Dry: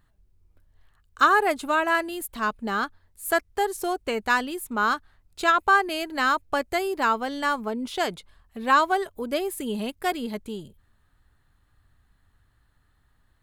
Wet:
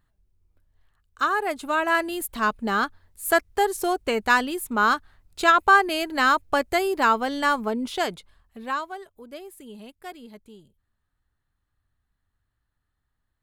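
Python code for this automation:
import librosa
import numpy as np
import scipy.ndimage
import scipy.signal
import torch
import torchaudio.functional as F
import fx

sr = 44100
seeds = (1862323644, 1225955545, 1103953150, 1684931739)

y = fx.gain(x, sr, db=fx.line((1.36, -5.0), (2.12, 3.0), (7.75, 3.0), (8.6, -5.0), (8.89, -13.0)))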